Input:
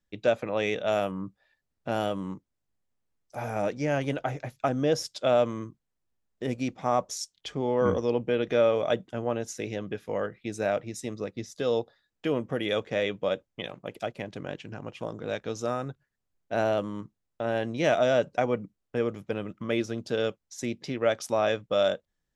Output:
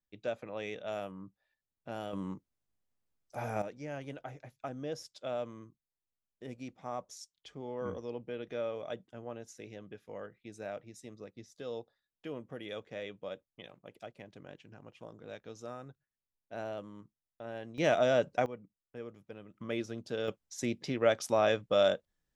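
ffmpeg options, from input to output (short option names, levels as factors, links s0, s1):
-af "asetnsamples=n=441:p=0,asendcmd='2.13 volume volume -4dB;3.62 volume volume -14dB;17.78 volume volume -4dB;18.46 volume volume -16.5dB;19.54 volume volume -8dB;20.28 volume volume -2dB',volume=0.251"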